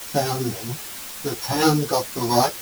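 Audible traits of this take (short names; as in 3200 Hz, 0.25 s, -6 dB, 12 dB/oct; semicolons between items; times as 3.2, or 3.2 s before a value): a buzz of ramps at a fixed pitch in blocks of 8 samples; tremolo triangle 1.4 Hz, depth 50%; a quantiser's noise floor 6-bit, dither triangular; a shimmering, thickened sound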